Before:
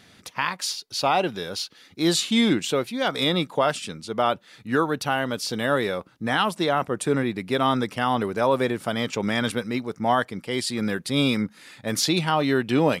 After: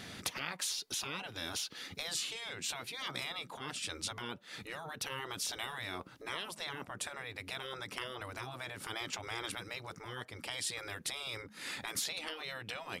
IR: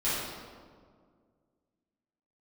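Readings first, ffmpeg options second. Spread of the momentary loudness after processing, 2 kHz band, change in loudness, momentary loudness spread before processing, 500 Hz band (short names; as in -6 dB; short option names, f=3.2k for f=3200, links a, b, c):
7 LU, -12.5 dB, -15.5 dB, 7 LU, -23.0 dB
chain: -af "acompressor=threshold=-34dB:ratio=16,afftfilt=real='re*lt(hypot(re,im),0.0282)':imag='im*lt(hypot(re,im),0.0282)':win_size=1024:overlap=0.75,volume=5.5dB"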